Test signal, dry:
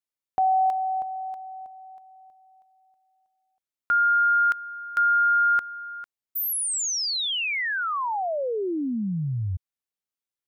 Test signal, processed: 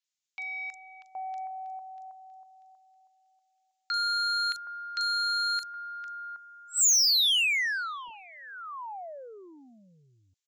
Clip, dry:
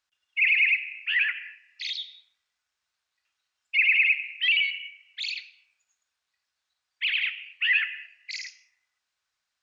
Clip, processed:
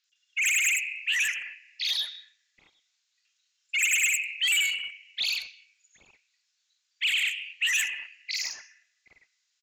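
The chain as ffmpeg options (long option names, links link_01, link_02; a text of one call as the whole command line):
ffmpeg -i in.wav -filter_complex "[0:a]aresample=16000,aeval=exprs='0.282*sin(PI/2*2.51*val(0)/0.282)':channel_layout=same,aresample=44100,aderivative,asplit=2[link_01][link_02];[link_02]highpass=frequency=720:poles=1,volume=11dB,asoftclip=type=tanh:threshold=-11dB[link_03];[link_01][link_03]amix=inputs=2:normalize=0,lowpass=frequency=1500:poles=1,volume=-6dB,crystalizer=i=6.5:c=0,acrossover=split=1100|5300[link_04][link_05][link_06];[link_06]adelay=40[link_07];[link_04]adelay=770[link_08];[link_08][link_05][link_07]amix=inputs=3:normalize=0,volume=-8dB" out.wav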